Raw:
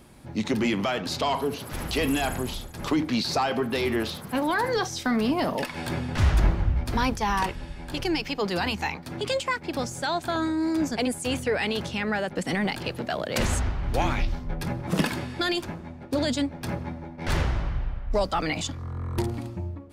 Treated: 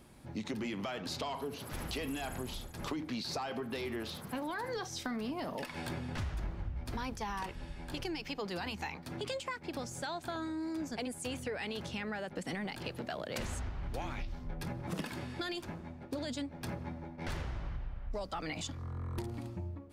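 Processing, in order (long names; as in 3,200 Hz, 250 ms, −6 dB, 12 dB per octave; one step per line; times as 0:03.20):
downward compressor 5 to 1, threshold −29 dBFS, peak gain reduction 12 dB
level −6.5 dB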